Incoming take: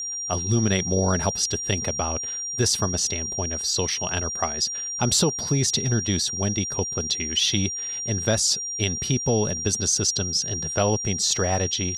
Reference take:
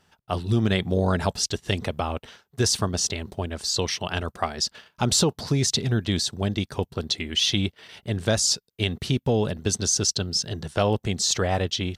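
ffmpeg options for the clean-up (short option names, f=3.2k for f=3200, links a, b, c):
-af "bandreject=f=5.7k:w=30"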